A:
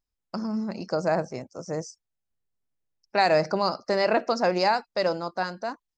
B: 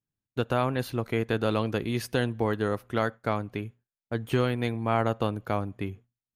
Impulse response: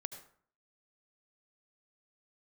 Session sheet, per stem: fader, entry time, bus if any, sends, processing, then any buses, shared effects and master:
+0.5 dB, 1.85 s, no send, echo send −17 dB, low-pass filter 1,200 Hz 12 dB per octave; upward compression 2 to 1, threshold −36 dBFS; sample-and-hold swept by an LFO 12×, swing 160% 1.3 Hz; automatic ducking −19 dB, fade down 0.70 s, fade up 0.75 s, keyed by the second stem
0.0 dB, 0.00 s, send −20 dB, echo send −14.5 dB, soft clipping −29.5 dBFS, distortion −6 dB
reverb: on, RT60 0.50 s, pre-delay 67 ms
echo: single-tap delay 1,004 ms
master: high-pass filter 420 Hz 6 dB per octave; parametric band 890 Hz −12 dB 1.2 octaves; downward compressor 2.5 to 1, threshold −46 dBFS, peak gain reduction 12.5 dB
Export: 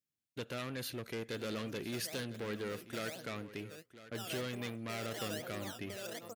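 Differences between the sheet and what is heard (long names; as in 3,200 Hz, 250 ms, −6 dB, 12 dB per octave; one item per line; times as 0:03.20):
stem A: entry 1.85 s → 1.00 s
master: missing downward compressor 2.5 to 1, threshold −46 dBFS, peak gain reduction 12.5 dB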